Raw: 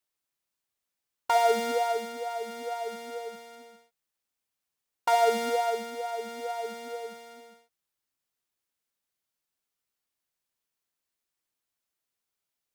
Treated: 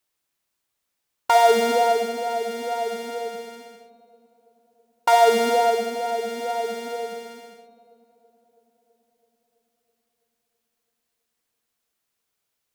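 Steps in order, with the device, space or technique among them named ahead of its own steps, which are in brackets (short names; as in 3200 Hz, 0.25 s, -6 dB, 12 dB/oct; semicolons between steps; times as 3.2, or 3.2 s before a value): dub delay into a spring reverb (darkening echo 0.329 s, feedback 72%, low-pass 1600 Hz, level -23 dB; spring tank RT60 2 s, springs 43/51 ms, chirp 25 ms, DRR 7.5 dB); gain +7 dB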